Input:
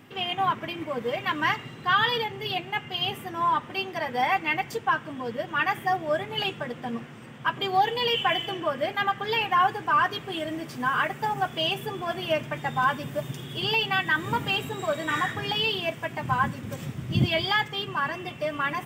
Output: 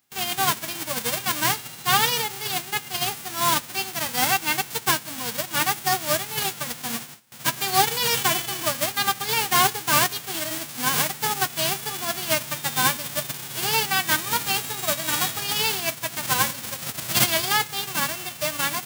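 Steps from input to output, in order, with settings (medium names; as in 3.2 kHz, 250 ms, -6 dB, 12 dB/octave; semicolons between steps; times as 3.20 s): formants flattened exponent 0.1; gate with hold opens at -32 dBFS; trim +2.5 dB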